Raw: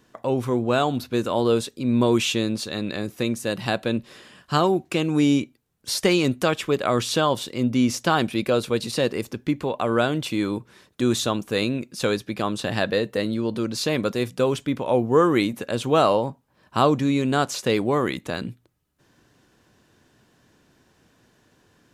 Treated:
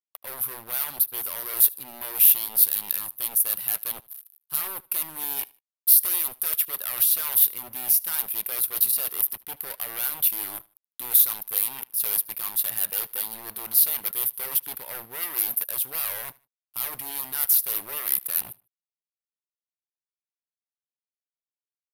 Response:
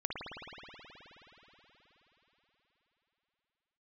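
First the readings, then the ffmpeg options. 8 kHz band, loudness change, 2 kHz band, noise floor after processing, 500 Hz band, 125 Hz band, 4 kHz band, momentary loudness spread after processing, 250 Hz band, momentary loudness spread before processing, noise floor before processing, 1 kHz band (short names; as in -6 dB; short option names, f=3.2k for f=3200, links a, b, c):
+9.0 dB, +1.0 dB, -10.0 dB, under -85 dBFS, -24.5 dB, under -25 dB, -7.0 dB, 15 LU, -29.5 dB, 8 LU, -63 dBFS, -15.5 dB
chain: -filter_complex "[0:a]adynamicequalizer=threshold=0.0112:dfrequency=1400:dqfactor=2.7:tfrequency=1400:tqfactor=2.7:attack=5:release=100:ratio=0.375:range=2.5:mode=boostabove:tftype=bell,aeval=exprs='sgn(val(0))*max(abs(val(0))-0.0106,0)':c=same,areverse,acompressor=threshold=-31dB:ratio=5,areverse,aeval=exprs='0.0237*(abs(mod(val(0)/0.0237+3,4)-2)-1)':c=same,crystalizer=i=7:c=0,equalizer=f=125:t=o:w=1:g=-4,equalizer=f=250:t=o:w=1:g=-7,equalizer=f=1k:t=o:w=1:g=3,equalizer=f=8k:t=o:w=1:g=-7,aexciter=amount=10.2:drive=8.5:freq=10k,asplit=2[a][b];[b]aecho=0:1:76|152:0.0668|0.0201[c];[a][c]amix=inputs=2:normalize=0,aresample=32000,aresample=44100,volume=-5.5dB"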